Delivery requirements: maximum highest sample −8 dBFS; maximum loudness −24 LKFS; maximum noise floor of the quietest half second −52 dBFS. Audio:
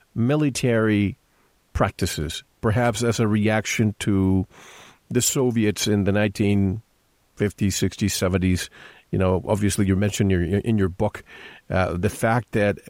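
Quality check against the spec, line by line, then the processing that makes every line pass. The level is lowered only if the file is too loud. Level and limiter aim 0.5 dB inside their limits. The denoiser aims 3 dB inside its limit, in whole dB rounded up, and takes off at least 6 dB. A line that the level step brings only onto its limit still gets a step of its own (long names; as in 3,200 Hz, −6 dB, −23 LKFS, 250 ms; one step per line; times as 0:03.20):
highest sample −7.0 dBFS: out of spec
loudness −22.5 LKFS: out of spec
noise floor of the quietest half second −63 dBFS: in spec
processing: level −2 dB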